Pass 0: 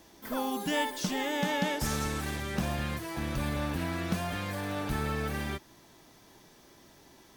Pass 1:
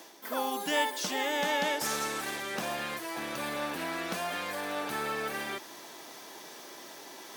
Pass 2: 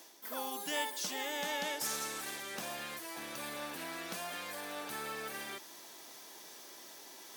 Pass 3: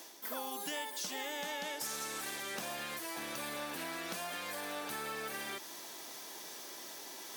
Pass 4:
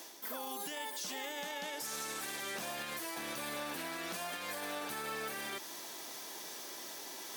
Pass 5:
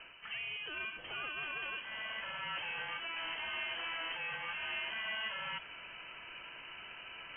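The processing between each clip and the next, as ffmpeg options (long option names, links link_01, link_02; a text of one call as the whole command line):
ffmpeg -i in.wav -af "highpass=400,areverse,acompressor=mode=upward:threshold=-39dB:ratio=2.5,areverse,volume=2.5dB" out.wav
ffmpeg -i in.wav -af "highshelf=frequency=3800:gain=8.5,volume=-9dB" out.wav
ffmpeg -i in.wav -af "acompressor=threshold=-42dB:ratio=4,volume=4.5dB" out.wav
ffmpeg -i in.wav -af "alimiter=level_in=8.5dB:limit=-24dB:level=0:latency=1:release=22,volume=-8.5dB,volume=1.5dB" out.wav
ffmpeg -i in.wav -af "aeval=exprs='clip(val(0),-1,0.0133)':channel_layout=same,lowpass=frequency=2800:width_type=q:width=0.5098,lowpass=frequency=2800:width_type=q:width=0.6013,lowpass=frequency=2800:width_type=q:width=0.9,lowpass=frequency=2800:width_type=q:width=2.563,afreqshift=-3300,volume=2.5dB" out.wav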